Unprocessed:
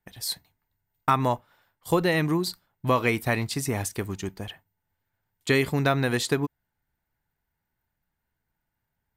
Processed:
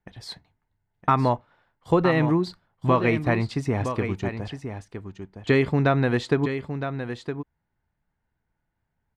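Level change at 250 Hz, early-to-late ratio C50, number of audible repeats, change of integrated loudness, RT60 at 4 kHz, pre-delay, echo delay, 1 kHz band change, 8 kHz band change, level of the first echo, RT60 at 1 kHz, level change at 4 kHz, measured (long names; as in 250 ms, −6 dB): +4.0 dB, no reverb audible, 1, +2.0 dB, no reverb audible, no reverb audible, 963 ms, +2.0 dB, −14.0 dB, −9.0 dB, no reverb audible, −5.0 dB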